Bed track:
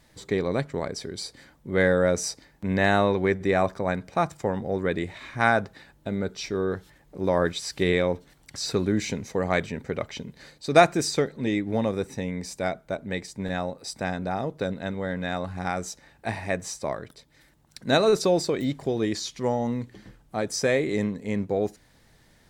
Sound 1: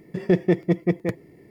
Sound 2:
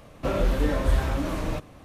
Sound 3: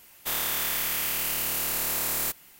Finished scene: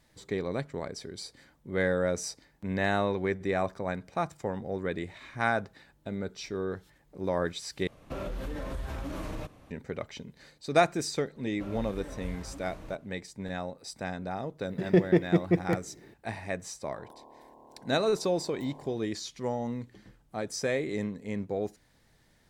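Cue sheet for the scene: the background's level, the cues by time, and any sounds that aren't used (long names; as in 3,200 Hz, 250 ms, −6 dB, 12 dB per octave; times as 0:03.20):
bed track −6.5 dB
0:07.87: overwrite with 2 −7 dB + downward compressor 10 to 1, threshold −24 dBFS
0:11.36: mix in 2 −17.5 dB
0:14.64: mix in 1 −3 dB
0:16.63: mix in 3 −11 dB + linear-phase brick-wall band-pass 210–1,100 Hz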